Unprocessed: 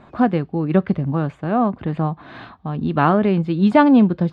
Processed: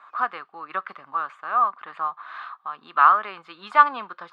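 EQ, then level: resonant high-pass 1.2 kHz, resonance Q 5.7; -5.5 dB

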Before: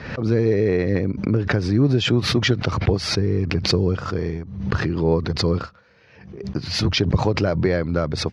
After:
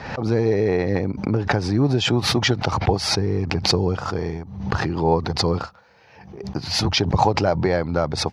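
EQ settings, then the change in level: peaking EQ 820 Hz +14 dB 0.58 oct; treble shelf 6.3 kHz +12 dB; -2.0 dB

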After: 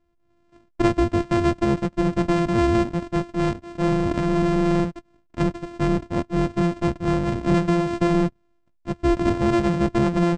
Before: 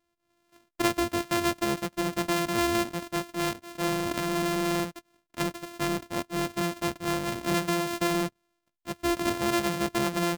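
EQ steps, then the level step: Chebyshev low-pass 8.8 kHz, order 8; tilt EQ -3.5 dB/octave; +3.5 dB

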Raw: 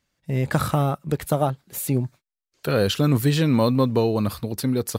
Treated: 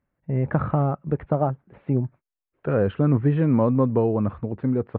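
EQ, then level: Gaussian low-pass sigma 5 samples; 0.0 dB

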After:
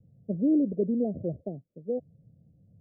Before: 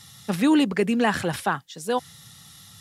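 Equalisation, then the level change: steep low-pass 650 Hz 96 dB/octave; -4.5 dB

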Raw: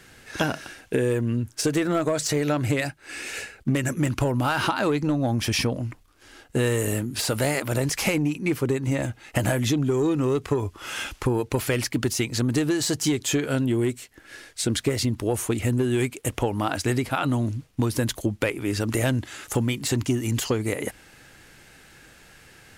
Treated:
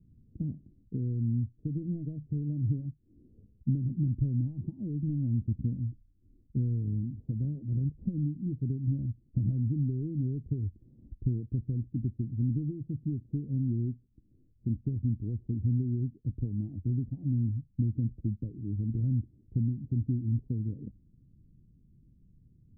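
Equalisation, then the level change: inverse Chebyshev low-pass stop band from 1.3 kHz, stop band 80 dB; -2.0 dB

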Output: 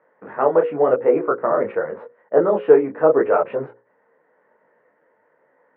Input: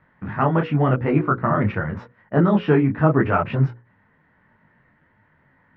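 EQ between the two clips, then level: resonant high-pass 480 Hz, resonance Q 4.7; distance through air 380 m; treble shelf 3.3 kHz -11 dB; 0.0 dB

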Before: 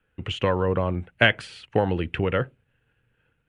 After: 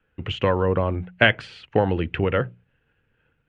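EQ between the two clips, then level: distance through air 110 m; hum notches 60/120/180 Hz; +2.5 dB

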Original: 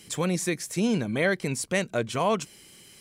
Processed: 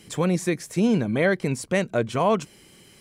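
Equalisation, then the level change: treble shelf 2.2 kHz -8.5 dB; +4.5 dB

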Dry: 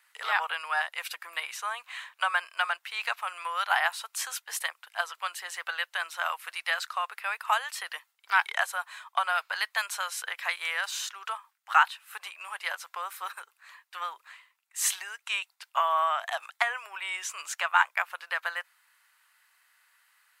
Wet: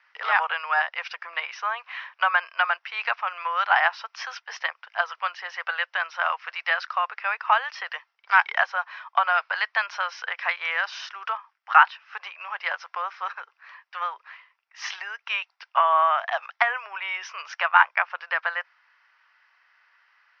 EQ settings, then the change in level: high-pass 400 Hz 24 dB/octave; steep low-pass 5.6 kHz 96 dB/octave; peaking EQ 4 kHz -11.5 dB 0.73 oct; +6.5 dB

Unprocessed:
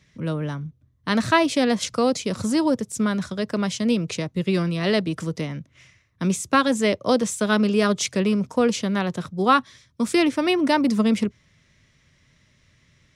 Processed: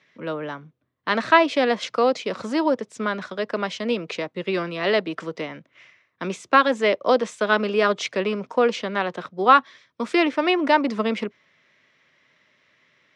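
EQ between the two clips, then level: band-pass 420–3000 Hz; +4.0 dB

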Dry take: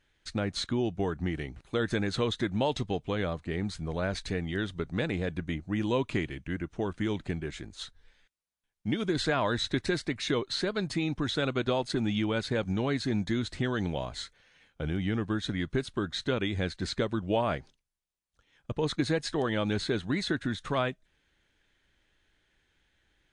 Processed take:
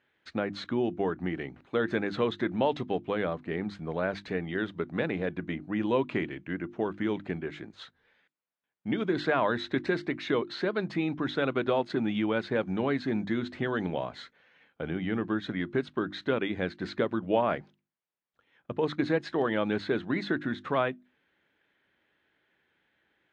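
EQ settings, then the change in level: band-pass 180–2400 Hz; hum notches 50/100/150/200/250/300/350 Hz; +2.5 dB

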